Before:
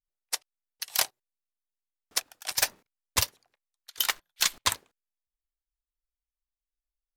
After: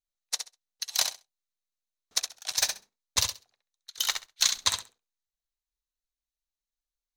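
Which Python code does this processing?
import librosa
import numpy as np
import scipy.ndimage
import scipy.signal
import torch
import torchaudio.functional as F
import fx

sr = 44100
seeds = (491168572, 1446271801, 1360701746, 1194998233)

y = fx.graphic_eq_31(x, sr, hz=(315, 4000, 6300, 12500), db=(-6, 10, 9, -5))
y = fx.echo_feedback(y, sr, ms=66, feedback_pct=16, wet_db=-7.0)
y = y * librosa.db_to_amplitude(-4.5)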